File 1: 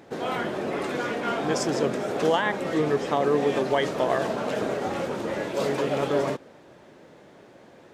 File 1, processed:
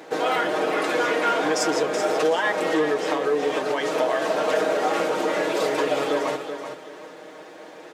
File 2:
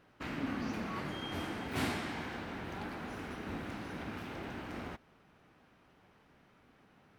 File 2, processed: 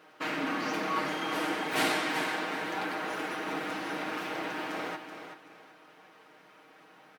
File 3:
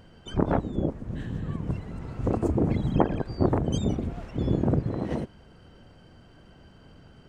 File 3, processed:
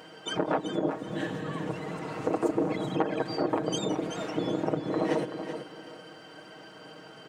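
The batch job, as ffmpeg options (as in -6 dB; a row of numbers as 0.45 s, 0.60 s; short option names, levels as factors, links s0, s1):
-af "acompressor=threshold=0.0501:ratio=12,asoftclip=type=tanh:threshold=0.0841,highpass=370,aecho=1:1:6.4:0.65,aecho=1:1:380|760|1140:0.355|0.0923|0.024,volume=2.66"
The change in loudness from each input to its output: +3.0 LU, +8.0 LU, -3.0 LU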